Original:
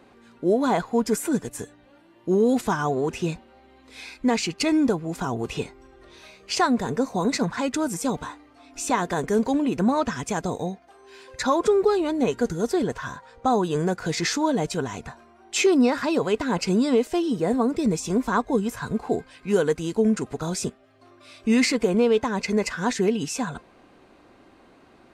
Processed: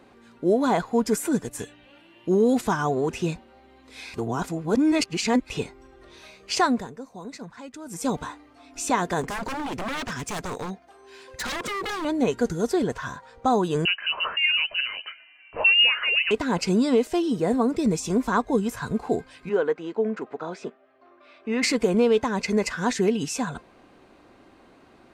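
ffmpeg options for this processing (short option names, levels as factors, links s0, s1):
-filter_complex "[0:a]asettb=1/sr,asplit=3[s0][s1][s2];[s0]atrim=end=1.604[s3];[s1]atrim=start=1.6:end=2.29,asetpts=PTS-STARTPTS,afade=t=in:d=0.004:c=qsin,afade=t=out:st=0.686:d=0.004:c=qsin,equalizer=f=2800:w=1.8:g=13.5[s4];[s2]atrim=start=2.286[s5];[s3][s4]acrossfade=d=0.004:c1=hsin:c2=qsin[s6];[s6][s5]acrossfade=d=0.004:c1=qsin:c2=hsin,asettb=1/sr,asplit=3[s7][s8][s9];[s7]atrim=end=9.214[s10];[s8]atrim=start=9.21:end=12.05,asetpts=PTS-STARTPTS,afade=t=in:d=0.004:c=qsin,afade=t=out:st=2.836:d=0.004:c=qsin,aeval=exprs='0.0562*(abs(mod(val(0)/0.0562+3,4)-2)-1)':c=same[s11];[s9]atrim=start=12.046[s12];[s10][s11]acrossfade=d=0.004:c1=hsin:c2=qsin[s13];[s13][s12]acrossfade=d=0.004:c1=qsin:c2=hsin,asettb=1/sr,asplit=3[s14][s15][s16];[s14]atrim=end=13.854[s17];[s15]atrim=start=13.85:end=16.31,asetpts=PTS-STARTPTS,afade=t=in:d=0.004:c=qsin,afade=t=out:st=2.456:d=0.004:c=qsin,lowpass=f=2600:t=q:w=0.5098,lowpass=f=2600:t=q:w=0.6013,lowpass=f=2600:t=q:w=0.9,lowpass=f=2600:t=q:w=2.563,afreqshift=-3100[s18];[s16]atrim=start=16.306[s19];[s17][s18]acrossfade=d=0.004:c1=hsin:c2=qsin[s20];[s20][s19]acrossfade=d=0.004:c1=qsin:c2=hsin,asplit=3[s21][s22][s23];[s21]afade=t=out:st=19.48:d=0.02[s24];[s22]highpass=360,lowpass=2100,afade=t=in:st=19.48:d=0.02,afade=t=out:st=21.62:d=0.02[s25];[s23]afade=t=in:st=21.62:d=0.02[s26];[s24][s25][s26]amix=inputs=3:normalize=0,asplit=5[s27][s28][s29][s30][s31];[s27]atrim=end=4.142[s32];[s28]atrim=start=4.138:end=5.502,asetpts=PTS-STARTPTS,areverse[s33];[s29]atrim=start=5.498:end=6.91,asetpts=PTS-STARTPTS,afade=t=out:st=1.182:d=0.23:silence=0.177828[s34];[s30]atrim=start=6.91:end=7.85,asetpts=PTS-STARTPTS,volume=0.178[s35];[s31]atrim=start=7.85,asetpts=PTS-STARTPTS,afade=t=in:d=0.23:silence=0.177828[s36];[s32][s33]acrossfade=d=0.004:c1=hsin:c2=hsin[s37];[s34][s35][s36]concat=n=3:v=0:a=1[s38];[s37][s38]acrossfade=d=0.004:c1=hsin:c2=hsin"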